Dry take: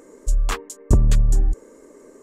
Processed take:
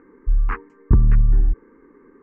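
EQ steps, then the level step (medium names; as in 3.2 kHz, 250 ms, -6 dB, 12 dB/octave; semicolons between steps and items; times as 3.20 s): low-pass 2.2 kHz 24 dB/octave; static phaser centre 1.5 kHz, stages 4; +1.5 dB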